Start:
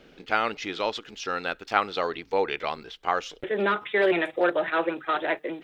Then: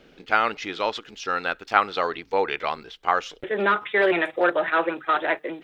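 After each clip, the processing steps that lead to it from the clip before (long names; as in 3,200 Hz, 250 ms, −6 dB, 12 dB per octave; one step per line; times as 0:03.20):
dynamic equaliser 1,300 Hz, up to +5 dB, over −36 dBFS, Q 0.73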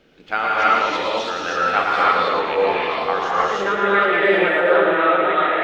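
on a send: echo with a time of its own for lows and highs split 610 Hz, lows 492 ms, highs 112 ms, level −5.5 dB
on the sum: reverb whose tail is shaped and stops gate 350 ms rising, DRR −7 dB
level −3 dB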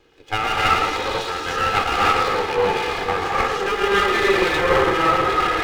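lower of the sound and its delayed copy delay 2.4 ms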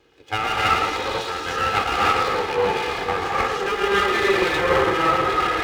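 high-pass filter 40 Hz
level −1.5 dB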